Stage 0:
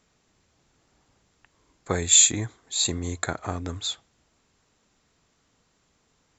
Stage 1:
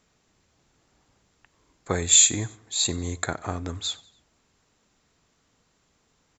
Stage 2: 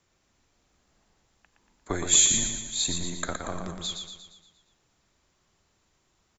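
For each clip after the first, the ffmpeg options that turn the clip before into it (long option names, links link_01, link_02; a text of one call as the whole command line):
ffmpeg -i in.wav -af "aecho=1:1:93|186|279:0.075|0.036|0.0173" out.wav
ffmpeg -i in.wav -af "aecho=1:1:117|234|351|468|585|702|819:0.531|0.276|0.144|0.0746|0.0388|0.0202|0.0105,afreqshift=-86,volume=-3.5dB" out.wav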